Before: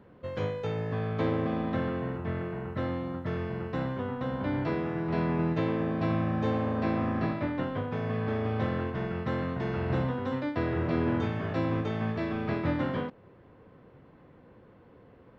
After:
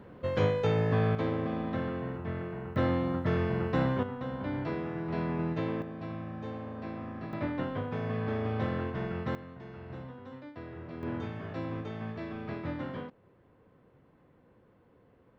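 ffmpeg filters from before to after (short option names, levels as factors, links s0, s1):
-af "asetnsamples=n=441:p=0,asendcmd='1.15 volume volume -3dB;2.76 volume volume 4dB;4.03 volume volume -4dB;5.82 volume volume -11dB;7.33 volume volume -2dB;9.35 volume volume -14.5dB;11.03 volume volume -7.5dB',volume=1.78"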